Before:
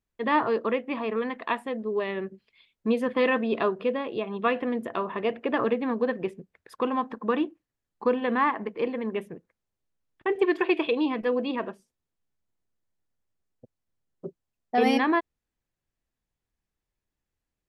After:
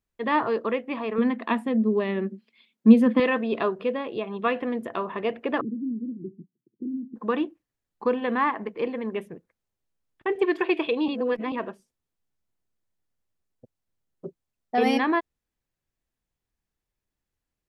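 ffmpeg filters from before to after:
ffmpeg -i in.wav -filter_complex "[0:a]asettb=1/sr,asplit=3[link_01][link_02][link_03];[link_01]atrim=end=1.184[link_04];[link_02]atrim=start=1.18:end=3.2,asetpts=PTS-STARTPTS,afade=type=in:duration=0.004:curve=qsin,afade=type=out:start_time=2.016:duration=0.004:curve=qsin,highpass=frequency=220:width_type=q:width=4.9[link_05];[link_03]atrim=start=3.196[link_06];[link_04][link_05]acrossfade=duration=0.004:curve1=hsin:curve2=qsin[link_07];[link_07][link_06]acrossfade=duration=0.004:curve1=qsin:curve2=hsin,asettb=1/sr,asplit=3[link_08][link_09][link_10];[link_08]atrim=end=5.614[link_11];[link_09]atrim=start=5.61:end=7.16,asetpts=PTS-STARTPTS,afade=type=in:duration=0.004:curve=qsin,afade=type=out:start_time=1.546:duration=0.004:curve=qsin,asuperpass=centerf=210:order=12:qfactor=0.92[link_12];[link_10]atrim=start=7.156[link_13];[link_11][link_12]acrossfade=duration=0.004:curve1=hsin:curve2=qsin[link_14];[link_14][link_13]acrossfade=duration=0.004:curve1=qsin:curve2=hsin,asplit=3[link_15][link_16][link_17];[link_15]atrim=end=11.082[link_18];[link_16]atrim=start=11.078:end=11.522,asetpts=PTS-STARTPTS,areverse[link_19];[link_17]atrim=start=11.518[link_20];[link_18][link_19]acrossfade=duration=0.004:curve1=hsin:curve2=hsin[link_21];[link_21][link_20]acrossfade=duration=0.004:curve1=hsin:curve2=hsin" out.wav

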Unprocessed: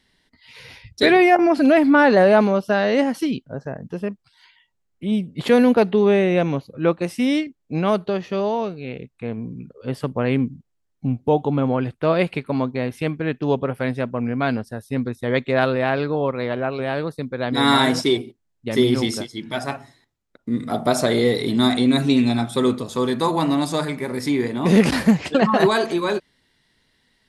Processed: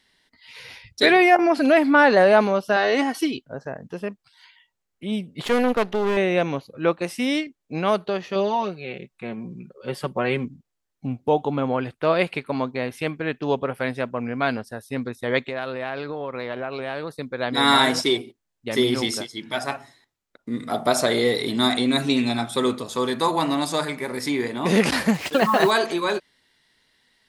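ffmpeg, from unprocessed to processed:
ffmpeg -i in.wav -filter_complex "[0:a]asettb=1/sr,asplit=3[link_01][link_02][link_03];[link_01]atrim=end=2.764[link_04];[link_02]atrim=start=2.76:end=3.41,asetpts=PTS-STARTPTS,afade=type=in:duration=0.004:curve=qsin,afade=type=out:start_time=0.646:duration=0.004:curve=qsin,aecho=1:1:2.7:0.65,atrim=end_sample=28665[link_05];[link_03]atrim=start=3.406[link_06];[link_04][link_05]acrossfade=duration=0.004:curve1=hsin:curve2=qsin[link_07];[link_07][link_06]acrossfade=duration=0.004:curve1=qsin:curve2=hsin,asettb=1/sr,asplit=3[link_08][link_09][link_10];[link_08]atrim=end=5.454[link_11];[link_09]atrim=start=5.45:end=6.17,asetpts=PTS-STARTPTS,afade=type=in:duration=0.004:curve=qsin,afade=type=out:start_time=0.716:duration=0.004:curve=qsin,aeval=exprs='if(lt(val(0),0),0.251*val(0),val(0))':channel_layout=same[link_12];[link_10]atrim=start=6.166[link_13];[link_11][link_12]acrossfade=duration=0.004:curve1=hsin:curve2=qsin[link_14];[link_14][link_13]acrossfade=duration=0.004:curve1=qsin:curve2=hsin,asettb=1/sr,asplit=3[link_15][link_16][link_17];[link_15]atrim=end=8.354[link_18];[link_16]atrim=start=8.35:end=10.45,asetpts=PTS-STARTPTS,afade=type=in:duration=0.004:curve=qsin,afade=type=out:start_time=2.096:duration=0.004:curve=qsin,aecho=1:1:5.4:0.65,atrim=end_sample=92610[link_19];[link_17]atrim=start=10.446[link_20];[link_18][link_19]acrossfade=duration=0.004:curve1=hsin:curve2=qsin[link_21];[link_21][link_20]acrossfade=duration=0.004:curve1=qsin:curve2=hsin,asettb=1/sr,asplit=3[link_22][link_23][link_24];[link_22]atrim=end=15.474[link_25];[link_23]atrim=start=15.47:end=17.1,asetpts=PTS-STARTPTS,afade=type=in:duration=0.004:curve=qsin,afade=type=out:start_time=1.626:duration=0.004:curve=qsin,acompressor=threshold=-23dB:ratio=10:attack=3.2:release=140:knee=1:detection=peak[link_26];[link_24]atrim=start=17.096[link_27];[link_25][link_26]acrossfade=duration=0.004:curve1=hsin:curve2=qsin[link_28];[link_28][link_27]acrossfade=duration=0.004:curve1=qsin:curve2=hsin,asettb=1/sr,asplit=3[link_29][link_30][link_31];[link_29]atrim=end=25.144[link_32];[link_30]atrim=start=25.14:end=25.71,asetpts=PTS-STARTPTS,afade=type=in:duration=0.004:curve=qsin,afade=type=out:start_time=0.566:duration=0.004:curve=qsin,acrusher=bits=5:mix=0:aa=0.5[link_33];[link_31]atrim=start=25.706[link_34];[link_32][link_33]acrossfade=duration=0.004:curve1=hsin:curve2=qsin[link_35];[link_35][link_34]acrossfade=duration=0.004:curve1=qsin:curve2=hsin,lowshelf=frequency=340:gain=-10,volume=1.5dB" out.wav

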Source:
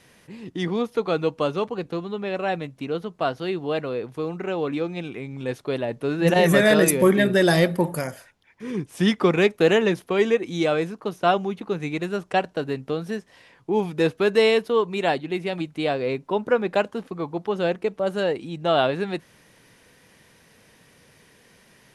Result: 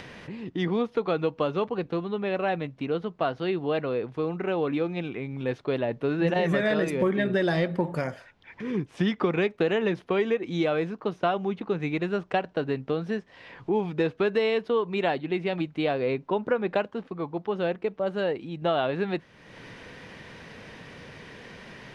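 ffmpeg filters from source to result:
ffmpeg -i in.wav -filter_complex "[0:a]asplit=3[link_01][link_02][link_03];[link_01]atrim=end=16.862[link_04];[link_02]atrim=start=16.858:end=18.622,asetpts=PTS-STARTPTS,volume=-3dB[link_05];[link_03]atrim=start=18.618[link_06];[link_04][link_05]acrossfade=duration=0.004:curve1=hsin:curve2=hsin[link_07];[link_07][link_06]acrossfade=duration=0.004:curve1=hsin:curve2=hsin,acompressor=threshold=-21dB:ratio=6,lowpass=3600,acompressor=mode=upward:threshold=-33dB:ratio=2.5" out.wav

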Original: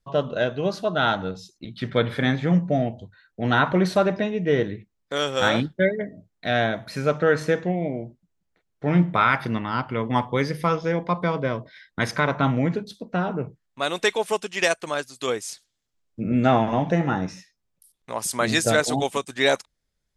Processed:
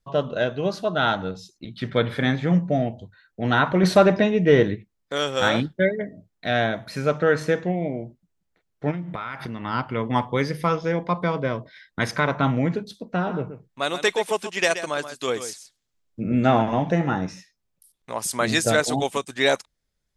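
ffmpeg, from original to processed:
ffmpeg -i in.wav -filter_complex "[0:a]asettb=1/sr,asplit=3[link_01][link_02][link_03];[link_01]atrim=end=3.834[link_04];[link_02]atrim=start=3.83:end=4.75,asetpts=PTS-STARTPTS,afade=type=in:duration=0.004:curve=qsin,afade=type=out:start_time=0.916:duration=0.004:curve=qsin,acontrast=39[link_05];[link_03]atrim=start=4.746[link_06];[link_04][link_05]acrossfade=duration=0.004:curve1=hsin:curve2=qsin[link_07];[link_07][link_06]acrossfade=duration=0.004:curve1=qsin:curve2=hsin,asplit=3[link_08][link_09][link_10];[link_08]afade=type=out:start_time=8.9:duration=0.02[link_11];[link_09]acompressor=threshold=-27dB:ratio=10:attack=3.2:release=140:knee=1:detection=peak,afade=type=in:start_time=8.9:duration=0.02,afade=type=out:start_time=9.64:duration=0.02[link_12];[link_10]afade=type=in:start_time=9.64:duration=0.02[link_13];[link_11][link_12][link_13]amix=inputs=3:normalize=0,asettb=1/sr,asplit=3[link_14][link_15][link_16];[link_14]atrim=end=13.134[link_17];[link_15]atrim=start=13.13:end=16.62,asetpts=PTS-STARTPTS,afade=type=in:duration=0.004:curve=qsin,afade=type=out:start_time=3.486:duration=0.004:curve=qsin,aecho=1:1:129:0.282,atrim=end_sample=153909[link_18];[link_16]atrim=start=16.616[link_19];[link_17][link_18]acrossfade=duration=0.004:curve1=hsin:curve2=qsin[link_20];[link_20][link_19]acrossfade=duration=0.004:curve1=qsin:curve2=hsin" out.wav

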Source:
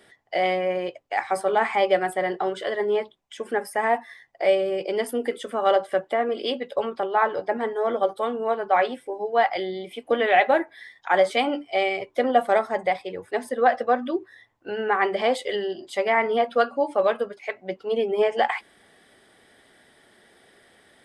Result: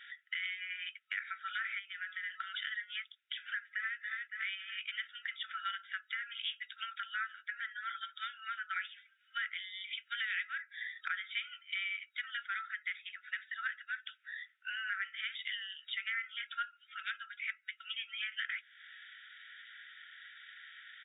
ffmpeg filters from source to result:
ffmpeg -i in.wav -filter_complex "[0:a]asplit=3[link_01][link_02][link_03];[link_01]afade=type=out:start_time=1.78:duration=0.02[link_04];[link_02]acompressor=threshold=-29dB:ratio=5:attack=3.2:release=140:knee=1:detection=peak,afade=type=in:start_time=1.78:duration=0.02,afade=type=out:start_time=2.35:duration=0.02[link_05];[link_03]afade=type=in:start_time=2.35:duration=0.02[link_06];[link_04][link_05][link_06]amix=inputs=3:normalize=0,asplit=2[link_07][link_08];[link_08]afade=type=in:start_time=3.58:duration=0.01,afade=type=out:start_time=3.99:duration=0.01,aecho=0:1:280|560|840|1120|1400:0.398107|0.179148|0.0806167|0.0362775|0.0163249[link_09];[link_07][link_09]amix=inputs=2:normalize=0,afftfilt=real='re*between(b*sr/4096,1300,3800)':imag='im*between(b*sr/4096,1300,3800)':win_size=4096:overlap=0.75,acompressor=threshold=-45dB:ratio=4,volume=6.5dB" out.wav

